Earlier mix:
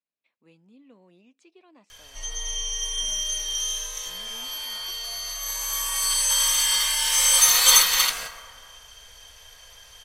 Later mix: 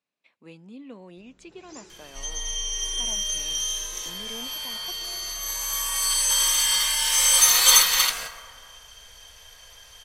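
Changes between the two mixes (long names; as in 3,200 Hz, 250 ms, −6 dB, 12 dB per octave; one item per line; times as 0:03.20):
speech +11.0 dB
first sound: unmuted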